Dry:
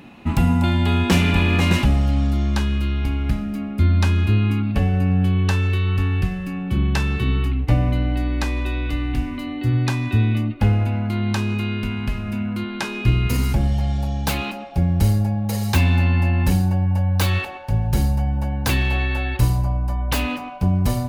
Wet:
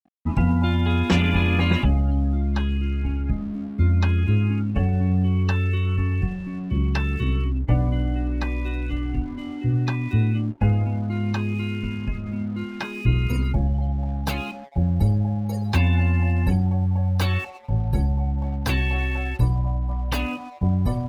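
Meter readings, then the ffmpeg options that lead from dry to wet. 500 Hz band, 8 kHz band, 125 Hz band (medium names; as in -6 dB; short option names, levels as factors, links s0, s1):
-3.0 dB, under -10 dB, -2.5 dB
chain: -af "afftdn=nr=26:nf=-30,aeval=exprs='sgn(val(0))*max(abs(val(0))-0.00631,0)':c=same,volume=0.794"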